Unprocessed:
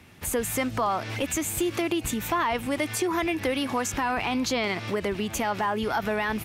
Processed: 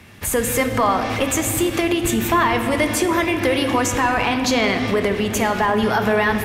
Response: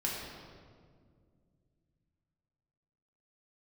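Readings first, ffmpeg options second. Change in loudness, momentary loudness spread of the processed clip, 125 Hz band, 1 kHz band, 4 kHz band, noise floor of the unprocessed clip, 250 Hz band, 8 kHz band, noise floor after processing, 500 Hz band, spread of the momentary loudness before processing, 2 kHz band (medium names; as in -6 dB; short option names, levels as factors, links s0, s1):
+8.0 dB, 3 LU, +9.5 dB, +8.0 dB, +8.0 dB, -38 dBFS, +8.0 dB, +7.5 dB, -25 dBFS, +8.5 dB, 2 LU, +9.0 dB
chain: -filter_complex "[0:a]equalizer=f=1800:w=5.3:g=2.5,asplit=2[s0][s1];[1:a]atrim=start_sample=2205,asetrate=30870,aresample=44100[s2];[s1][s2]afir=irnorm=-1:irlink=0,volume=0.376[s3];[s0][s3]amix=inputs=2:normalize=0,volume=1.58"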